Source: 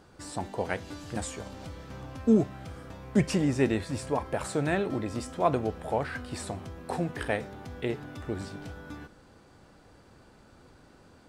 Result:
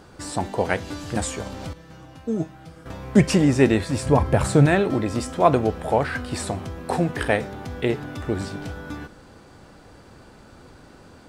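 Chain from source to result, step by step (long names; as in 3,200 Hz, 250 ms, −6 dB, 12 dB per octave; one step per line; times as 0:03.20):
0:01.73–0:02.86: tuned comb filter 160 Hz, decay 0.19 s, harmonics all, mix 90%
0:04.06–0:04.66: parametric band 98 Hz +12 dB 2.3 octaves
level +8.5 dB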